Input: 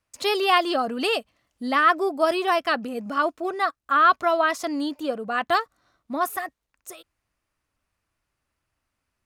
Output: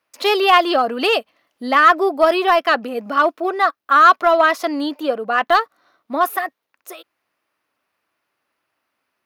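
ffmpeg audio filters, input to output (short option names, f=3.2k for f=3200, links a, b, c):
-filter_complex "[0:a]highpass=320,equalizer=f=7.7k:w=1.3:g=-12,asplit=2[a][b];[b]volume=18.5dB,asoftclip=hard,volume=-18.5dB,volume=-7dB[c];[a][c]amix=inputs=2:normalize=0,volume=5dB"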